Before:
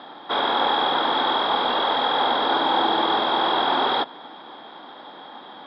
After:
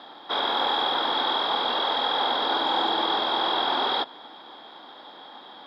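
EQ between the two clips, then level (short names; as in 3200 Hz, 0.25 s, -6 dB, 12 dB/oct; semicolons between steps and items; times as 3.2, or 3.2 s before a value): tone controls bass -4 dB, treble +11 dB; -4.5 dB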